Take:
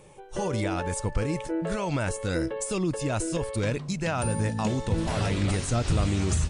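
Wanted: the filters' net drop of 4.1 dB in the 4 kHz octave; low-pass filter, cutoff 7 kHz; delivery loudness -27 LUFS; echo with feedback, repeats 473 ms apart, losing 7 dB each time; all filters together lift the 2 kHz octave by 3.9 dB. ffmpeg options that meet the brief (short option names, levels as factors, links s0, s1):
-af "lowpass=7000,equalizer=f=2000:t=o:g=7,equalizer=f=4000:t=o:g=-7.5,aecho=1:1:473|946|1419|1892|2365:0.447|0.201|0.0905|0.0407|0.0183,volume=1.06"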